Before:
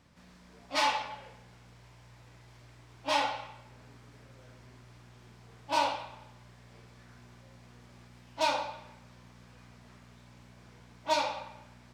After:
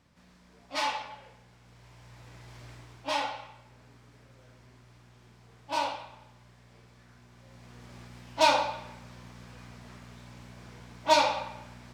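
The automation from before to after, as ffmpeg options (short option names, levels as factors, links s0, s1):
-af "volume=6.31,afade=t=in:st=1.59:d=1.12:silence=0.316228,afade=t=out:st=2.71:d=0.42:silence=0.334965,afade=t=in:st=7.31:d=0.65:silence=0.375837"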